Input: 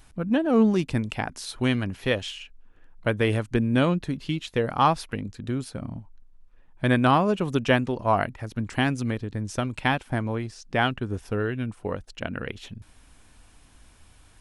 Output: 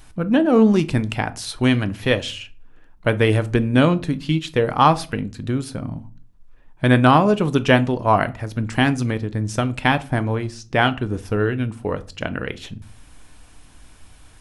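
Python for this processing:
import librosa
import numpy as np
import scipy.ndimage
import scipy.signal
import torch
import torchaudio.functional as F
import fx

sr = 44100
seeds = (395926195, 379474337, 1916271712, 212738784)

y = fx.room_shoebox(x, sr, seeds[0], volume_m3=230.0, walls='furnished', distance_m=0.45)
y = F.gain(torch.from_numpy(y), 5.5).numpy()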